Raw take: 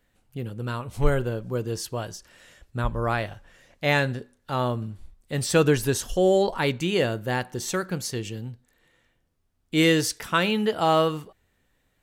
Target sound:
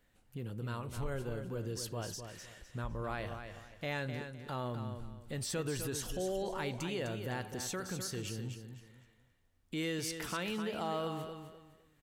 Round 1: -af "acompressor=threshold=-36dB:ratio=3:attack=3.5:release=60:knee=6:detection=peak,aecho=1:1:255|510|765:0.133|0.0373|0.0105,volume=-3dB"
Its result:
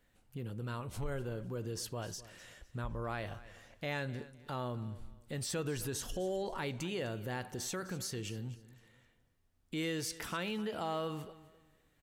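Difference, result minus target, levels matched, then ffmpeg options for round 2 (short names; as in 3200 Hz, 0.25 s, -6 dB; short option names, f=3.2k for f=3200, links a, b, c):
echo-to-direct -9.5 dB
-af "acompressor=threshold=-36dB:ratio=3:attack=3.5:release=60:knee=6:detection=peak,aecho=1:1:255|510|765:0.398|0.111|0.0312,volume=-3dB"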